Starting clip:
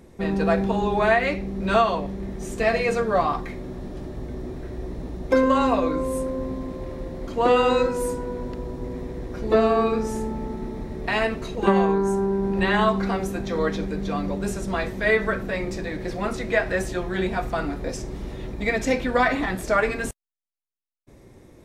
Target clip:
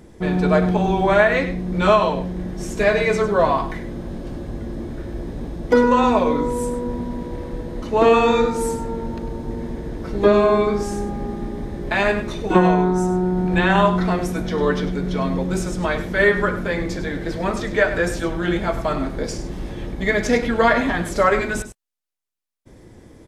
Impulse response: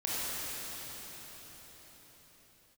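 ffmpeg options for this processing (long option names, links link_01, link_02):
-af "asetrate=41013,aresample=44100,aecho=1:1:100:0.251,volume=4dB"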